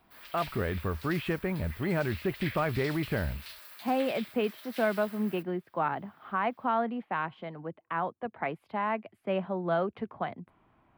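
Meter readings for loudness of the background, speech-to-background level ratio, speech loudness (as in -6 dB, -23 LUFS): -44.5 LUFS, 12.0 dB, -32.5 LUFS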